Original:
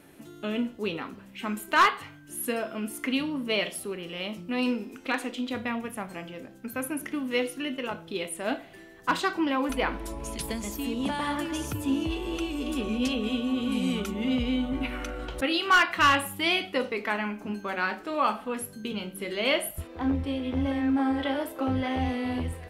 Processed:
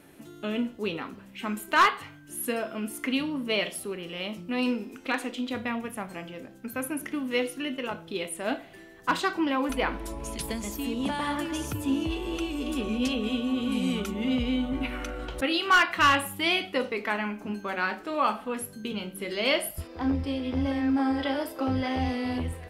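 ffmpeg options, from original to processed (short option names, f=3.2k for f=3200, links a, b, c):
-filter_complex "[0:a]asettb=1/sr,asplit=3[a][b][c];[a]atrim=end=19.294[d];[b]atrim=start=19.29:end=22.38,asetpts=PTS-STARTPTS,afade=t=in:d=0.004:c=qsin,afade=t=out:st=3.086:d=0.004:c=qsin,equalizer=f=5k:t=o:w=0.2:g=15[e];[c]atrim=start=22.376[f];[d][e]acrossfade=d=0.004:c1=hsin:c2=qsin[g];[g][f]acrossfade=d=0.004:c1=qsin:c2=hsin"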